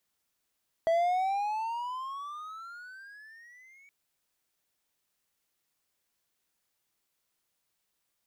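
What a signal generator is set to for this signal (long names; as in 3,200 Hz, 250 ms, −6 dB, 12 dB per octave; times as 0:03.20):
pitch glide with a swell triangle, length 3.02 s, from 653 Hz, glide +21.5 semitones, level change −33 dB, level −20 dB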